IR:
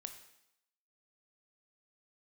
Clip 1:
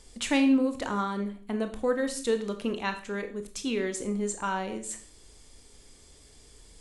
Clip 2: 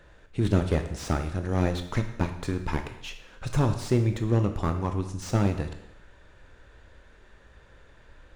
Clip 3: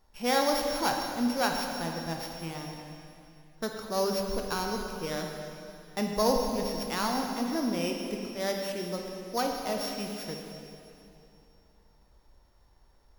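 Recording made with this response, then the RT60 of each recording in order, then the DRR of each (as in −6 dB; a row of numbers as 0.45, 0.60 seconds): 2; 0.50, 0.80, 2.8 seconds; 7.0, 6.5, 1.5 decibels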